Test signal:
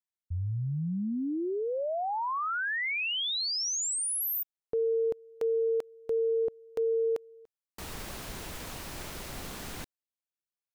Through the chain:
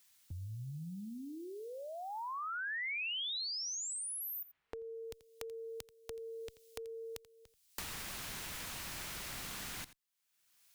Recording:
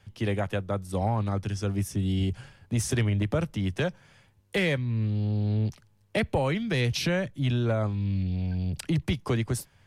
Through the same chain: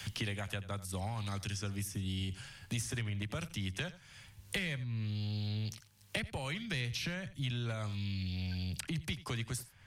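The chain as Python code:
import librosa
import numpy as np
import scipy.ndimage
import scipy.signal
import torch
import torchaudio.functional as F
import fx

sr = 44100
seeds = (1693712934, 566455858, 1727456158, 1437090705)

p1 = fx.tone_stack(x, sr, knobs='5-5-5')
p2 = p1 + fx.echo_single(p1, sr, ms=85, db=-18.0, dry=0)
p3 = fx.band_squash(p2, sr, depth_pct=100)
y = p3 * librosa.db_to_amplitude(3.5)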